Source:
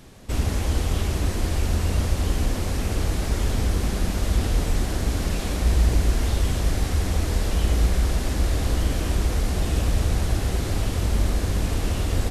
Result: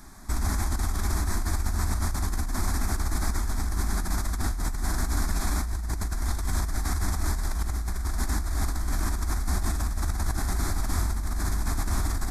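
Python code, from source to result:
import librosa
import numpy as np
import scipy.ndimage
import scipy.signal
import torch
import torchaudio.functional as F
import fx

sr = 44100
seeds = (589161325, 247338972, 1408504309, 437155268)

y = fx.peak_eq(x, sr, hz=120.0, db=-13.0, octaves=1.2)
y = fx.over_compress(y, sr, threshold_db=-27.0, ratio=-1.0)
y = fx.fixed_phaser(y, sr, hz=1200.0, stages=4)
y = F.gain(torch.from_numpy(y), 2.0).numpy()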